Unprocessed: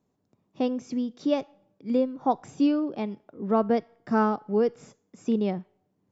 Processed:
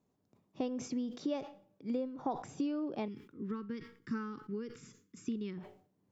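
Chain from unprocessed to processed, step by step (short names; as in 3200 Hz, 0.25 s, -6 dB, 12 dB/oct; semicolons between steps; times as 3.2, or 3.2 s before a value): dynamic EQ 190 Hz, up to -5 dB, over -42 dBFS, Q 4.2; compressor 6:1, threshold -29 dBFS, peak gain reduction 11 dB; 3.08–5.58 Butterworth band-stop 680 Hz, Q 0.73; sustainer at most 110 dB/s; gain -3.5 dB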